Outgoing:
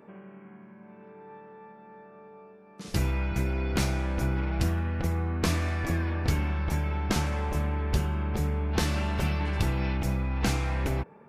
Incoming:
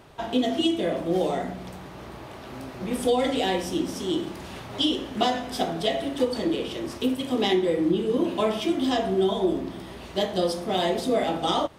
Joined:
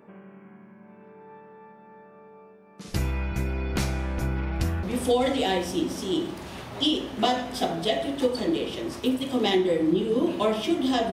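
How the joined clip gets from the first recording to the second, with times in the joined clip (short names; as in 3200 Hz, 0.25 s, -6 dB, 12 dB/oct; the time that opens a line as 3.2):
outgoing
4.25–4.83 echo throw 0.3 s, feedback 55%, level -15.5 dB
4.83 switch to incoming from 2.81 s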